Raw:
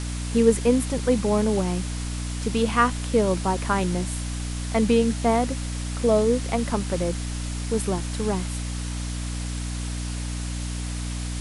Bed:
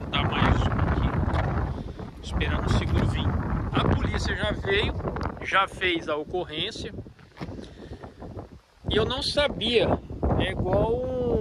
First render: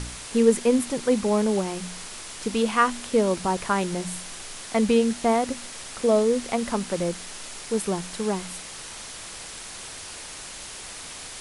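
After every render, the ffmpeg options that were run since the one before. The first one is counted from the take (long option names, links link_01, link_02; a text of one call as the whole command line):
ffmpeg -i in.wav -af "bandreject=frequency=60:width_type=h:width=4,bandreject=frequency=120:width_type=h:width=4,bandreject=frequency=180:width_type=h:width=4,bandreject=frequency=240:width_type=h:width=4,bandreject=frequency=300:width_type=h:width=4" out.wav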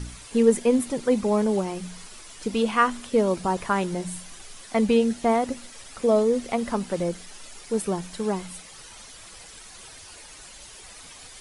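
ffmpeg -i in.wav -af "afftdn=noise_reduction=10:noise_floor=-39" out.wav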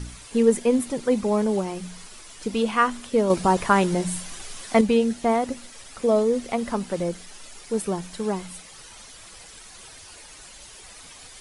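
ffmpeg -i in.wav -filter_complex "[0:a]asplit=3[link_01][link_02][link_03];[link_01]atrim=end=3.302[link_04];[link_02]atrim=start=3.298:end=4.812,asetpts=PTS-STARTPTS,volume=5.5dB[link_05];[link_03]atrim=start=4.808[link_06];[link_04][link_05]acrossfade=duration=0.004:curve1=hsin:curve2=hsin[link_07];[link_07][link_06]acrossfade=duration=0.004:curve1=hsin:curve2=hsin" out.wav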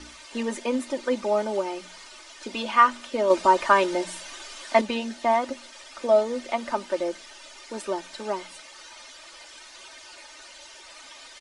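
ffmpeg -i in.wav -filter_complex "[0:a]acrossover=split=330 6900:gain=0.112 1 0.0891[link_01][link_02][link_03];[link_01][link_02][link_03]amix=inputs=3:normalize=0,aecho=1:1:3.3:0.78" out.wav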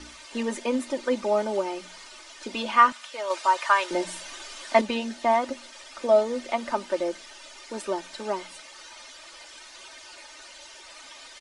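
ffmpeg -i in.wav -filter_complex "[0:a]asettb=1/sr,asplit=3[link_01][link_02][link_03];[link_01]atrim=end=2.924[link_04];[link_02]atrim=start=2.92:end=3.91,asetpts=PTS-STARTPTS,afade=type=in:duration=0.004:curve=qsin,afade=type=out:start_time=0.986:duration=0.004:curve=qsin,highpass=920[link_05];[link_03]atrim=start=3.906[link_06];[link_04][link_05]acrossfade=duration=0.004:curve1=hsin:curve2=qsin[link_07];[link_07][link_06]acrossfade=duration=0.004:curve1=qsin:curve2=hsin" out.wav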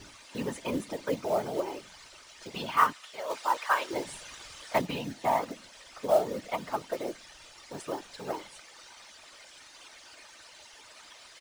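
ffmpeg -i in.wav -af "acrusher=bits=5:mode=log:mix=0:aa=0.000001,afftfilt=real='hypot(re,im)*cos(2*PI*random(0))':imag='hypot(re,im)*sin(2*PI*random(1))':win_size=512:overlap=0.75" out.wav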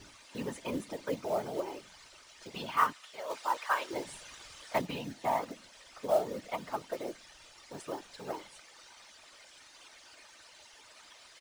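ffmpeg -i in.wav -af "volume=-4dB" out.wav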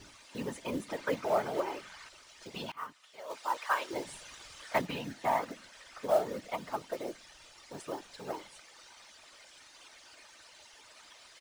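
ffmpeg -i in.wav -filter_complex "[0:a]asettb=1/sr,asplit=3[link_01][link_02][link_03];[link_01]atrim=end=0.884[link_04];[link_02]atrim=start=0.88:end=2.09,asetpts=PTS-STARTPTS,afade=type=in:duration=0.004:curve=qsin,afade=type=out:start_time=1.206:duration=0.004:curve=qsin,equalizer=frequency=1500:width_type=o:width=1.8:gain=9.5[link_05];[link_03]atrim=start=2.086[link_06];[link_04][link_05]acrossfade=duration=0.004:curve1=hsin:curve2=qsin[link_07];[link_07][link_06]acrossfade=duration=0.004:curve1=qsin:curve2=hsin,asettb=1/sr,asplit=3[link_08][link_09][link_10];[link_08]atrim=end=4.594[link_11];[link_09]atrim=start=4.59:end=6.38,asetpts=PTS-STARTPTS,afade=type=in:duration=0.004:curve=qsin,afade=type=out:start_time=1.786:duration=0.004:curve=qsin,equalizer=frequency=1600:width=1.5:gain=5.5[link_12];[link_10]atrim=start=6.376[link_13];[link_11][link_12]acrossfade=duration=0.004:curve1=hsin:curve2=qsin[link_14];[link_14][link_13]acrossfade=duration=0.004:curve1=qsin:curve2=hsin,asplit=2[link_15][link_16];[link_15]atrim=end=2.72,asetpts=PTS-STARTPTS,afade=type=out:start_time=2.716:duration=0.004:curve=hsin:silence=0.0841395[link_17];[link_16]atrim=start=2.72,asetpts=PTS-STARTPTS,afade=type=in:duration=0.94:silence=0.0841395[link_18];[link_17][link_18]concat=n=2:v=0:a=1" out.wav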